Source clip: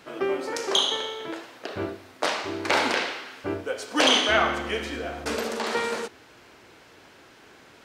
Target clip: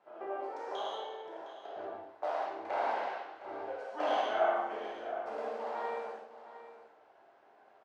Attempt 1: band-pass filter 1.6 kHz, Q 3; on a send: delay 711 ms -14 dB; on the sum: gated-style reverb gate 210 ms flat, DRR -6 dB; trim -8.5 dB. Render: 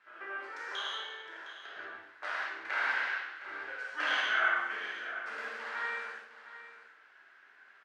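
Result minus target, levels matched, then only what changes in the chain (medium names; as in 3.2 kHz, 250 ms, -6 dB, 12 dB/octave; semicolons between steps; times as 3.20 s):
2 kHz band +11.0 dB
change: band-pass filter 730 Hz, Q 3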